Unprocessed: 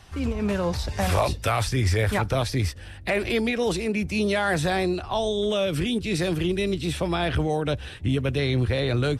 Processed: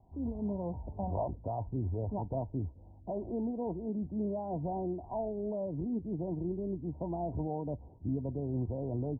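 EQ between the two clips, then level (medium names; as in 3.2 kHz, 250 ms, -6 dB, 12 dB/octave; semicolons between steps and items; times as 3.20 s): rippled Chebyshev low-pass 980 Hz, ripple 6 dB; -7.5 dB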